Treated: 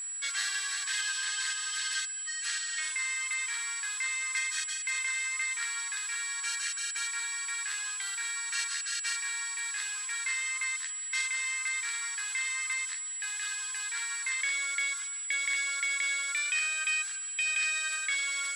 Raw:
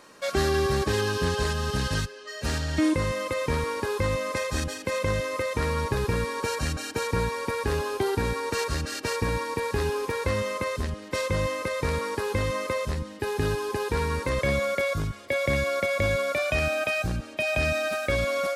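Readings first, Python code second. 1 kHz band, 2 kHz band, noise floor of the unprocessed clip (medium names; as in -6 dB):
-13.5 dB, +0.5 dB, -43 dBFS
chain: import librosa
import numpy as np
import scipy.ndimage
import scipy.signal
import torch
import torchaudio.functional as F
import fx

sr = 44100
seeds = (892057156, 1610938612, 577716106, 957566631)

y = scipy.signal.sosfilt(scipy.signal.ellip(3, 1.0, 80, [1600.0, 9900.0], 'bandpass', fs=sr, output='sos'), x)
y = fx.small_body(y, sr, hz=(2100.0, 3300.0), ring_ms=45, db=6)
y = y + 10.0 ** (-35.0 / 20.0) * np.sin(2.0 * np.pi * 7800.0 * np.arange(len(y)) / sr)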